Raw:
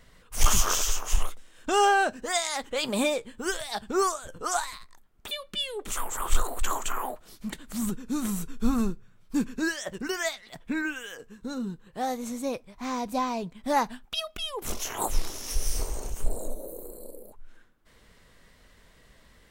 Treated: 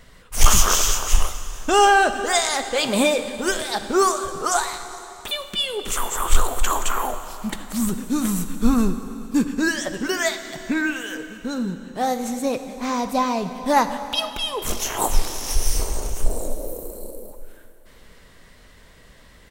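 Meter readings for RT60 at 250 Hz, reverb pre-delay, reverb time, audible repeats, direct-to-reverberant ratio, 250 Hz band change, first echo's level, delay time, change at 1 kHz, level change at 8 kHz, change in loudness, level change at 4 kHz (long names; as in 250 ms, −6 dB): 2.9 s, 7 ms, 2.9 s, 1, 9.0 dB, +7.5 dB, −23.0 dB, 450 ms, +7.5 dB, +7.5 dB, +7.5 dB, +7.5 dB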